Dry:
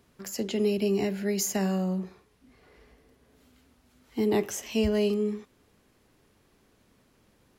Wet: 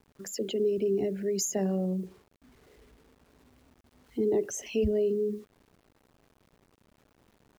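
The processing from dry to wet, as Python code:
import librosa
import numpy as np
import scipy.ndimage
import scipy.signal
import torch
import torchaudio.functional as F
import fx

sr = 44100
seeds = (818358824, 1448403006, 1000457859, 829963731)

y = fx.envelope_sharpen(x, sr, power=2.0)
y = fx.quant_dither(y, sr, seeds[0], bits=10, dither='none')
y = y * 10.0 ** (-1.5 / 20.0)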